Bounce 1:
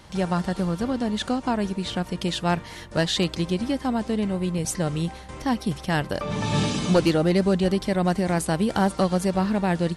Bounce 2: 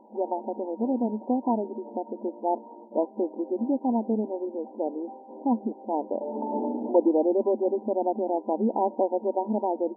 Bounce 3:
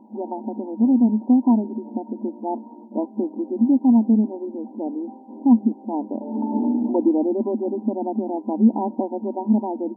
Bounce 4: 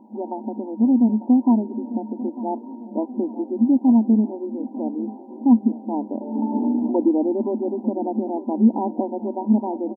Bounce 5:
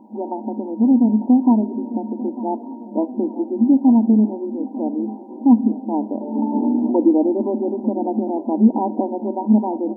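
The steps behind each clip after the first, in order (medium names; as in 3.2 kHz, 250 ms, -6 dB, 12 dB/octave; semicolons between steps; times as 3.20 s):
FFT band-pass 210–1000 Hz
graphic EQ 125/250/500 Hz +8/+10/-10 dB; trim +2 dB
feedback delay 897 ms, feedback 55%, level -16 dB
reverberation RT60 0.75 s, pre-delay 6 ms, DRR 14 dB; trim +3 dB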